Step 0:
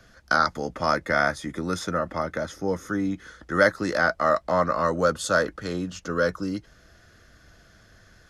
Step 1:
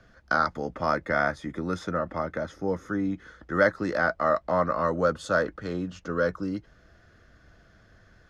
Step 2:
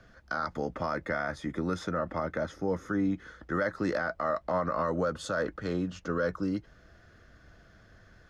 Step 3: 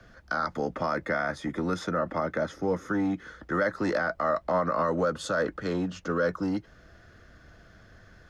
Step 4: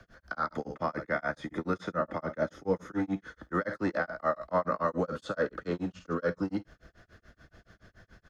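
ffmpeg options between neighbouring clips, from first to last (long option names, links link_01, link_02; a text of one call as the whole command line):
ffmpeg -i in.wav -af "aemphasis=mode=reproduction:type=75kf,volume=-1.5dB" out.wav
ffmpeg -i in.wav -af "alimiter=limit=-20dB:level=0:latency=1:release=65" out.wav
ffmpeg -i in.wav -filter_complex "[0:a]acrossover=split=120|410|1800[link_01][link_02][link_03][link_04];[link_01]acompressor=threshold=-54dB:ratio=6[link_05];[link_02]volume=29.5dB,asoftclip=hard,volume=-29.5dB[link_06];[link_05][link_06][link_03][link_04]amix=inputs=4:normalize=0,volume=3.5dB" out.wav
ffmpeg -i in.wav -filter_complex "[0:a]aecho=1:1:52|68:0.178|0.224,tremolo=f=7:d=1,acrossover=split=3900[link_01][link_02];[link_02]acompressor=threshold=-58dB:ratio=4:attack=1:release=60[link_03];[link_01][link_03]amix=inputs=2:normalize=0" out.wav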